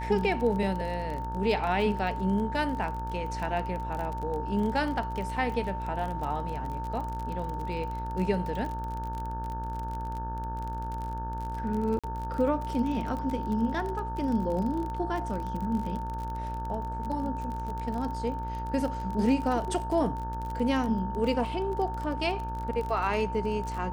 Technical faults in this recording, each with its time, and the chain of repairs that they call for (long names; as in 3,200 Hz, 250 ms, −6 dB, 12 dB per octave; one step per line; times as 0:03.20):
mains buzz 60 Hz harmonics 29 −36 dBFS
surface crackle 34 per second −33 dBFS
whistle 900 Hz −35 dBFS
0:11.99–0:12.04: drop-out 46 ms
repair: click removal
hum removal 60 Hz, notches 29
notch filter 900 Hz, Q 30
repair the gap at 0:11.99, 46 ms